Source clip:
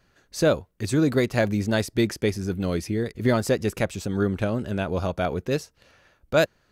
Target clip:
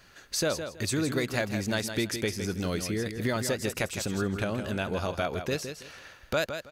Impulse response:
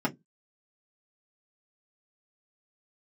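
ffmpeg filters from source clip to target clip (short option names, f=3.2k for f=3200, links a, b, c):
-af "tiltshelf=f=940:g=-4.5,acompressor=threshold=-40dB:ratio=2.5,aecho=1:1:162|324|486:0.376|0.0827|0.0182,volume=7.5dB"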